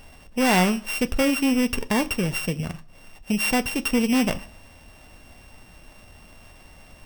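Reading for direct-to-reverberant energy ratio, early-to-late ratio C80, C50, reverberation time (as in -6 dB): 10.5 dB, 24.0 dB, 20.5 dB, 0.45 s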